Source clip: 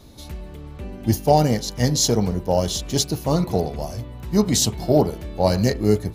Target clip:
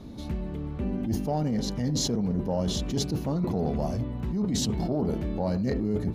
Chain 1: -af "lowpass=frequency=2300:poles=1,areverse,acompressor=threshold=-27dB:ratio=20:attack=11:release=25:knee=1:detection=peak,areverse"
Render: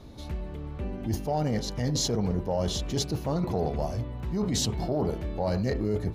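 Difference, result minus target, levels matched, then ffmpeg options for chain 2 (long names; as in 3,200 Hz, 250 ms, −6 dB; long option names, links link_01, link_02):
250 Hz band −2.5 dB
-af "lowpass=frequency=2300:poles=1,equalizer=frequency=220:width=1.2:gain=9.5,areverse,acompressor=threshold=-27dB:ratio=20:attack=11:release=25:knee=1:detection=peak,areverse"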